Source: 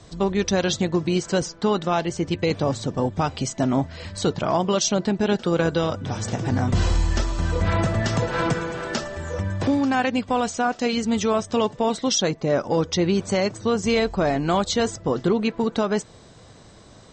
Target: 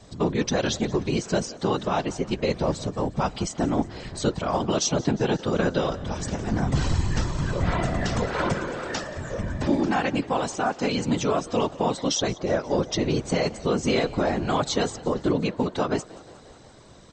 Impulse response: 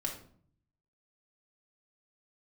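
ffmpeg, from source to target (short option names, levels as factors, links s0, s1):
-filter_complex "[0:a]afftfilt=real='hypot(re,im)*cos(2*PI*random(0))':imag='hypot(re,im)*sin(2*PI*random(1))':win_size=512:overlap=0.75,asplit=7[s0][s1][s2][s3][s4][s5][s6];[s1]adelay=178,afreqshift=47,volume=0.0944[s7];[s2]adelay=356,afreqshift=94,volume=0.0603[s8];[s3]adelay=534,afreqshift=141,volume=0.0385[s9];[s4]adelay=712,afreqshift=188,volume=0.0248[s10];[s5]adelay=890,afreqshift=235,volume=0.0158[s11];[s6]adelay=1068,afreqshift=282,volume=0.0101[s12];[s0][s7][s8][s9][s10][s11][s12]amix=inputs=7:normalize=0,volume=1.5"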